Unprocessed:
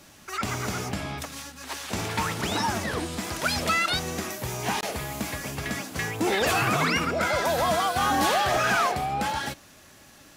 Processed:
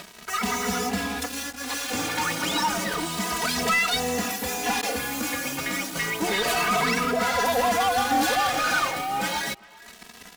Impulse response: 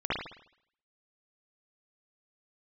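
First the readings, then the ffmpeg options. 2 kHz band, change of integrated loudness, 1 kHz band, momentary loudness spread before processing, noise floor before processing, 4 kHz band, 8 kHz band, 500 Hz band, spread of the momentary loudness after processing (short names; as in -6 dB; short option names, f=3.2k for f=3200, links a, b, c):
+2.0 dB, +1.5 dB, +1.5 dB, 10 LU, -52 dBFS, +2.5 dB, +4.0 dB, 0.0 dB, 8 LU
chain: -filter_complex "[0:a]highpass=f=160:p=1,aecho=1:1:4.1:0.91,acrossover=split=3900[a][b];[a]acompressor=mode=upward:threshold=-35dB:ratio=2.5[c];[c][b]amix=inputs=2:normalize=0,acrusher=bits=5:mix=0:aa=0.5,asoftclip=type=tanh:threshold=-24.5dB,asplit=2[d][e];[e]adelay=390,highpass=300,lowpass=3.4k,asoftclip=type=hard:threshold=-33dB,volume=-17dB[f];[d][f]amix=inputs=2:normalize=0,asplit=2[g][h];[h]adelay=2.7,afreqshift=0.31[i];[g][i]amix=inputs=2:normalize=1,volume=7dB"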